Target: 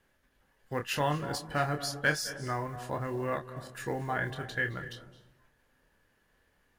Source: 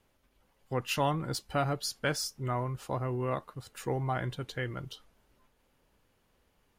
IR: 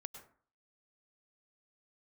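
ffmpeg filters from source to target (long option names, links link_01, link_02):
-filter_complex "[0:a]acrusher=bits=8:mode=log:mix=0:aa=0.000001,equalizer=frequency=1700:width=4.7:gain=13,asplit=2[link_01][link_02];[1:a]atrim=start_sample=2205,asetrate=23373,aresample=44100,adelay=27[link_03];[link_02][link_03]afir=irnorm=-1:irlink=0,volume=-4.5dB[link_04];[link_01][link_04]amix=inputs=2:normalize=0,volume=-2dB"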